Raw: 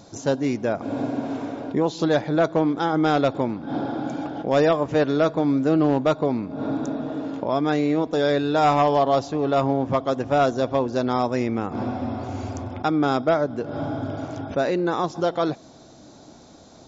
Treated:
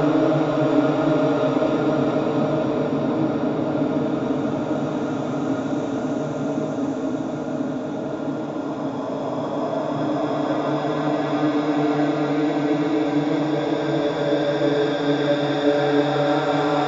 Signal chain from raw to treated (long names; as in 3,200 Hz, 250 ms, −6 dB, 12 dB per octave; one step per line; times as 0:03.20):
feedback delay with all-pass diffusion 567 ms, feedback 43%, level −6 dB
extreme stretch with random phases 6.5×, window 1.00 s, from 0:05.91